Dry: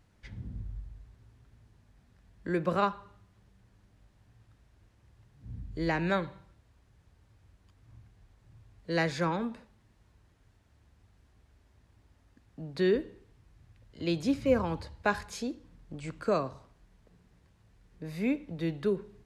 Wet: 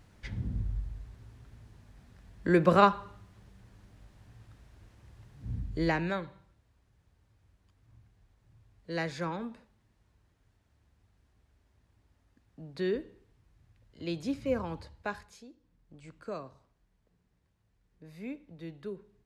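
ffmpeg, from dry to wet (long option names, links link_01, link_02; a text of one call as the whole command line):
ffmpeg -i in.wav -af "volume=13dB,afade=type=out:start_time=5.51:duration=0.63:silence=0.266073,afade=type=out:start_time=14.85:duration=0.61:silence=0.237137,afade=type=in:start_time=15.46:duration=0.54:silence=0.473151" out.wav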